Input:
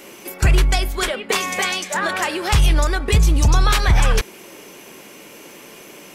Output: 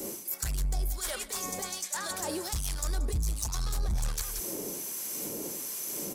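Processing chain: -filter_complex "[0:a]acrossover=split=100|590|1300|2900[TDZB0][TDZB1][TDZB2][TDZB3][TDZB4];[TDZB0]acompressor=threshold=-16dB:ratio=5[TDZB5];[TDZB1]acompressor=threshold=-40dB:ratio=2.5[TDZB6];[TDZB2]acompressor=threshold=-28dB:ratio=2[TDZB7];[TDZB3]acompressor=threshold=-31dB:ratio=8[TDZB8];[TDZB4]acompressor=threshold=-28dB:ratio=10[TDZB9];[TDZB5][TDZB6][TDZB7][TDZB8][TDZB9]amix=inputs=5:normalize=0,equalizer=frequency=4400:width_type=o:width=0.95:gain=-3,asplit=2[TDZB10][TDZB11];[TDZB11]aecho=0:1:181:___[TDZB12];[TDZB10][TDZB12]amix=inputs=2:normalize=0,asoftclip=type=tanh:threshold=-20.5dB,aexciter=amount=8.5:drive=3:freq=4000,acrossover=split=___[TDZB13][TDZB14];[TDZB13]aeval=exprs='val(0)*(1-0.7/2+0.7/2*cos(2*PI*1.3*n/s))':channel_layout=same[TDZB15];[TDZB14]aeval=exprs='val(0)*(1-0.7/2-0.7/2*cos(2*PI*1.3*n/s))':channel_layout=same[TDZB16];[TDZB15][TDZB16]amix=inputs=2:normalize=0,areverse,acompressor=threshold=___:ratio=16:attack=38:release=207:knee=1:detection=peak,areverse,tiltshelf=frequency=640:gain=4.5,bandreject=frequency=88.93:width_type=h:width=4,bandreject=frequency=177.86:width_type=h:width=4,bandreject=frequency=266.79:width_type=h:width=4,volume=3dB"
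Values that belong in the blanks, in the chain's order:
0.168, 810, -34dB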